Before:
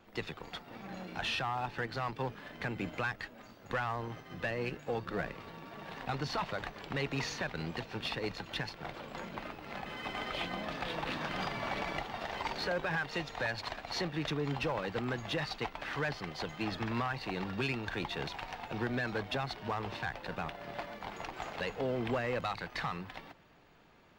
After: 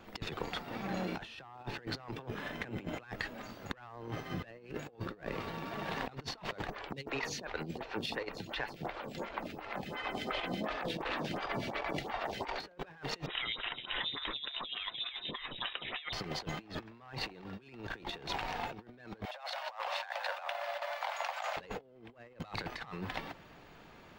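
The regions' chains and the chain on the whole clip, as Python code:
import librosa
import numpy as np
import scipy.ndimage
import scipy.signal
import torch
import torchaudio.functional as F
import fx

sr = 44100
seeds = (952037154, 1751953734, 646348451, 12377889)

y = fx.chain(x, sr, fx.notch(hz=4500.0, q=8.7),
    fx.transformer_sat(knee_hz=430.0), at=(2.04, 3.0))
y = fx.chain(y, sr, fx.harmonic_tremolo(hz=8.4, depth_pct=50, crossover_hz=1000.0),
    fx.stagger_phaser(hz=2.8), at=(6.7, 12.6))
y = fx.chain(y, sr, fx.freq_invert(carrier_hz=3800),
    fx.stagger_phaser(hz=3.4), at=(13.26, 16.13))
y = fx.chain(y, sr, fx.steep_highpass(hz=540.0, slope=96),
    fx.echo_single(ms=170, db=-17.0), at=(19.25, 21.57))
y = fx.dynamic_eq(y, sr, hz=390.0, q=1.1, threshold_db=-48.0, ratio=4.0, max_db=5)
y = fx.over_compress(y, sr, threshold_db=-42.0, ratio=-0.5)
y = y * librosa.db_to_amplitude(2.0)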